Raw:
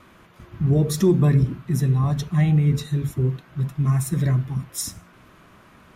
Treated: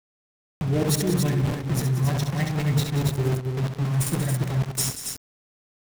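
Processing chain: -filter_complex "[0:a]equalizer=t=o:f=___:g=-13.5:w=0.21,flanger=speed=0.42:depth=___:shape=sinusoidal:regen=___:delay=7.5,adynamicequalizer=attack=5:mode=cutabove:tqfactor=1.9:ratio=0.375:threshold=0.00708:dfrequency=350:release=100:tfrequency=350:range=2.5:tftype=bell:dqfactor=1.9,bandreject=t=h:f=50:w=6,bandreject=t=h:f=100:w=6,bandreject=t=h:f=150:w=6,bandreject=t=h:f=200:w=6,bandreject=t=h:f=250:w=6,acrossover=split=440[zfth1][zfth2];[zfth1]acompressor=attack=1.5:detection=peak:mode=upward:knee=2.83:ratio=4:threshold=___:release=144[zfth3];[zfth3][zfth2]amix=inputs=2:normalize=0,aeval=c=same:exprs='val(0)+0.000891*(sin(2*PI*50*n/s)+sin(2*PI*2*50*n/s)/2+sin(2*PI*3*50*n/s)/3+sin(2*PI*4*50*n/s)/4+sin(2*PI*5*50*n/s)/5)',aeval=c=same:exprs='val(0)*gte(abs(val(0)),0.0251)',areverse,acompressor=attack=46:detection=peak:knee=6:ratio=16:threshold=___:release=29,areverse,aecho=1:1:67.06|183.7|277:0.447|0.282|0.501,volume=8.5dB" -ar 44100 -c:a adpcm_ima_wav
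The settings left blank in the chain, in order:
1.2k, 3.1, 69, -36dB, -36dB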